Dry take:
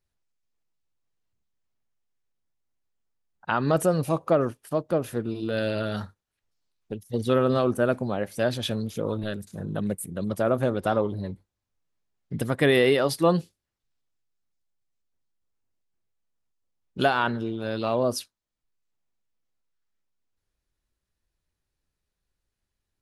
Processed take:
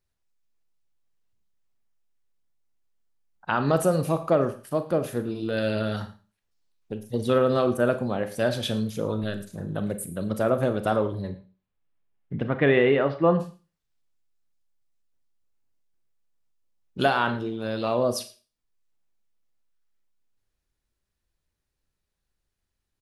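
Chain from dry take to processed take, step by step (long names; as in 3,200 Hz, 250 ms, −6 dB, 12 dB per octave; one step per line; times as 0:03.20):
0:11.31–0:13.39: low-pass filter 4,000 Hz → 2,300 Hz 24 dB per octave
single-tap delay 111 ms −20 dB
four-comb reverb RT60 0.34 s, combs from 29 ms, DRR 9.5 dB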